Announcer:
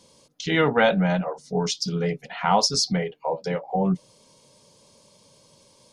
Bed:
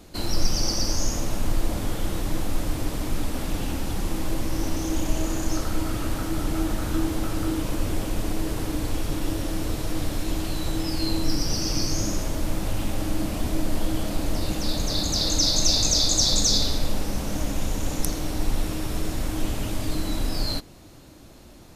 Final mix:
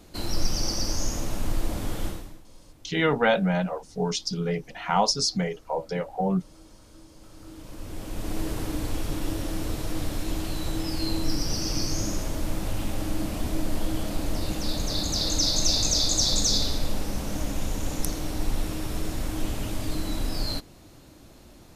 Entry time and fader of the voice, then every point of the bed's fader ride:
2.45 s, -2.5 dB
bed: 2.07 s -3 dB
2.45 s -26.5 dB
7.08 s -26.5 dB
8.38 s -2.5 dB

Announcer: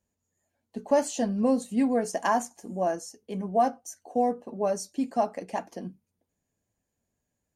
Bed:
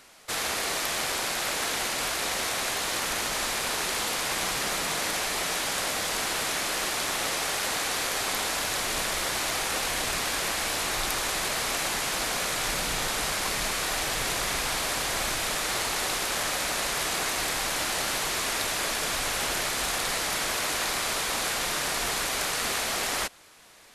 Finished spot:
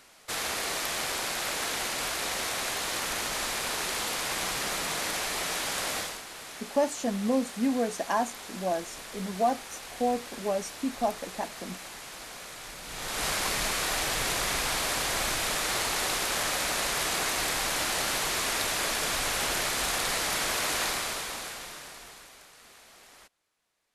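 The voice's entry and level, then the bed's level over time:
5.85 s, -2.5 dB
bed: 5.99 s -2.5 dB
6.23 s -14 dB
12.81 s -14 dB
13.26 s -0.5 dB
20.85 s -0.5 dB
22.5 s -25 dB

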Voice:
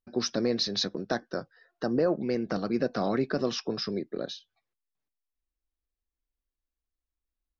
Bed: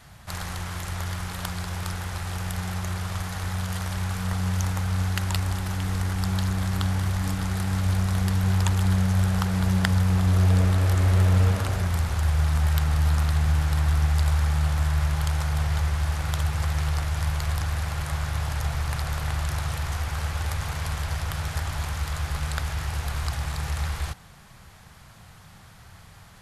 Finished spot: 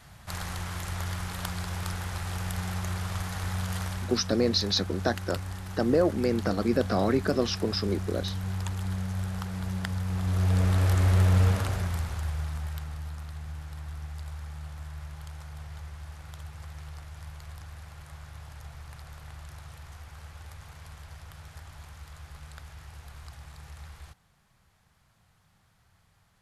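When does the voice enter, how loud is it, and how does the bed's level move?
3.95 s, +2.5 dB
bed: 3.83 s -2.5 dB
4.23 s -10 dB
10.01 s -10 dB
10.79 s -2 dB
11.55 s -2 dB
13.15 s -17 dB

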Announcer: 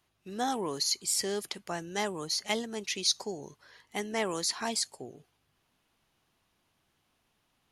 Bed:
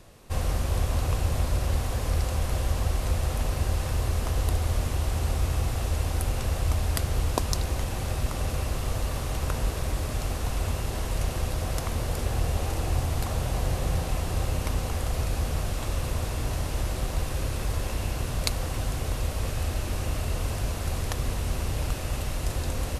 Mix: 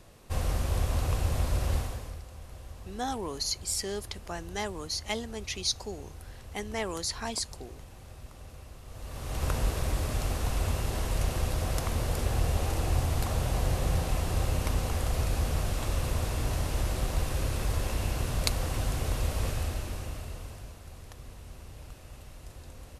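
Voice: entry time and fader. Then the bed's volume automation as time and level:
2.60 s, -2.0 dB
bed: 1.77 s -2.5 dB
2.23 s -18.5 dB
8.85 s -18.5 dB
9.45 s -1 dB
19.47 s -1 dB
20.83 s -17.5 dB

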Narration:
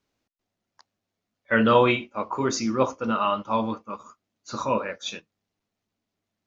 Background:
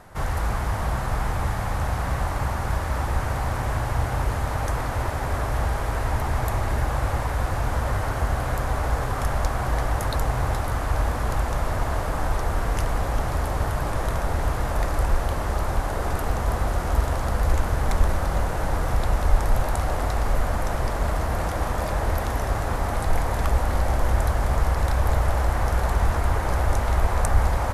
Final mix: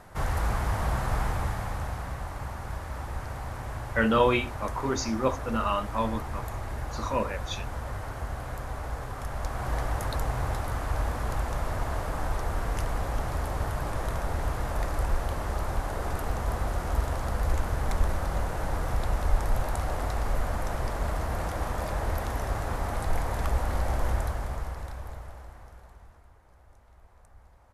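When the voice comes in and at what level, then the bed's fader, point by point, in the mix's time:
2.45 s, -4.0 dB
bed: 1.2 s -2.5 dB
2.19 s -10.5 dB
9.27 s -10.5 dB
9.73 s -5.5 dB
24.09 s -5.5 dB
26.37 s -35 dB

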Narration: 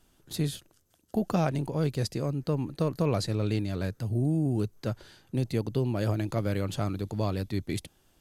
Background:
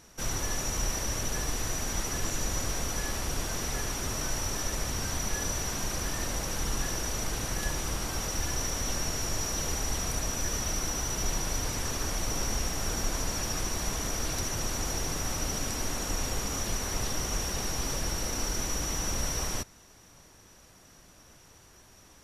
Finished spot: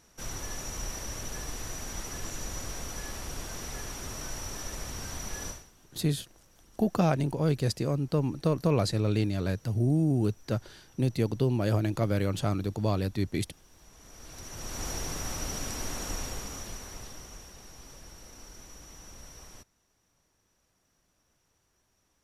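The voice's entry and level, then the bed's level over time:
5.65 s, +1.5 dB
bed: 5.49 s -6 dB
5.72 s -29.5 dB
13.64 s -29.5 dB
14.85 s -3 dB
16.1 s -3 dB
17.56 s -17.5 dB

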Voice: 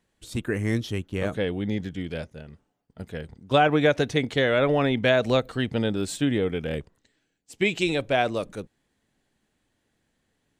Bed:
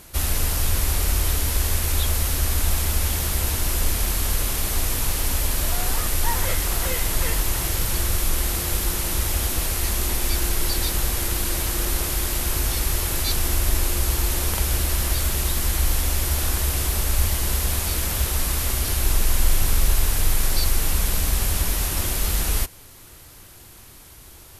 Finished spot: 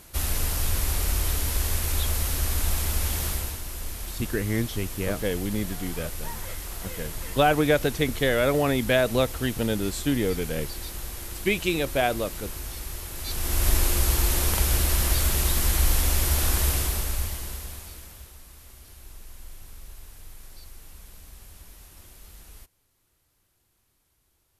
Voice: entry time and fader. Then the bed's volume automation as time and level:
3.85 s, -1.0 dB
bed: 3.29 s -4 dB
3.63 s -12.5 dB
13.14 s -12.5 dB
13.67 s -0.5 dB
16.69 s -0.5 dB
18.41 s -25 dB

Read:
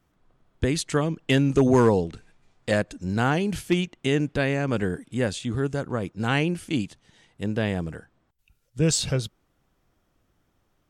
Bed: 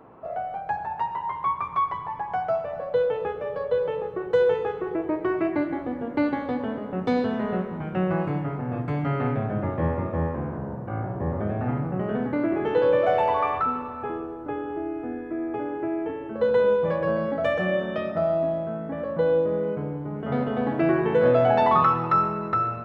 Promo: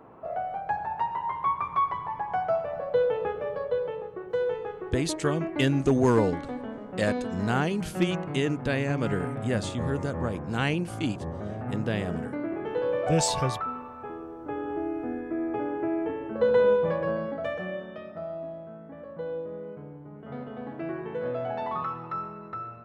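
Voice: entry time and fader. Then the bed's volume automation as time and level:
4.30 s, -3.5 dB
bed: 3.45 s -1 dB
4.11 s -7.5 dB
14.16 s -7.5 dB
14.71 s -0.5 dB
16.73 s -0.5 dB
17.99 s -12.5 dB

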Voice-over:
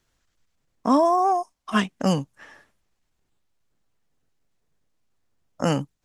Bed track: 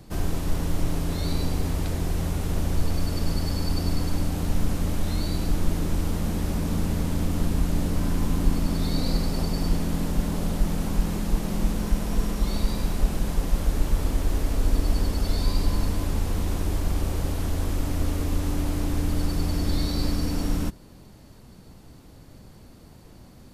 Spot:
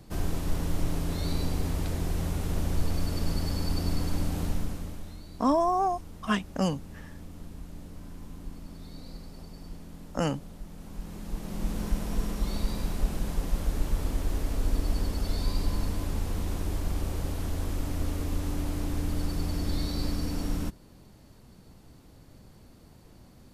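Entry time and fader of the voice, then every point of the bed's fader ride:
4.55 s, -5.5 dB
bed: 4.44 s -3.5 dB
5.23 s -19 dB
10.7 s -19 dB
11.8 s -5 dB

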